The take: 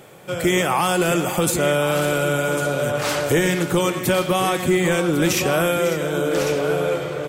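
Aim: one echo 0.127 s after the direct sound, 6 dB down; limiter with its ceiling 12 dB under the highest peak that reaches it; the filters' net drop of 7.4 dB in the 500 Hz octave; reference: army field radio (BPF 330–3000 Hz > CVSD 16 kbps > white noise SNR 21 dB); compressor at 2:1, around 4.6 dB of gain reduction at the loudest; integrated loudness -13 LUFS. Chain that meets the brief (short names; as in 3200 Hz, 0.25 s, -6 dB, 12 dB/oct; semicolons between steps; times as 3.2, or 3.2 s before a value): bell 500 Hz -8 dB; compressor 2:1, threshold -25 dBFS; limiter -25.5 dBFS; BPF 330–3000 Hz; echo 0.127 s -6 dB; CVSD 16 kbps; white noise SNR 21 dB; gain +23 dB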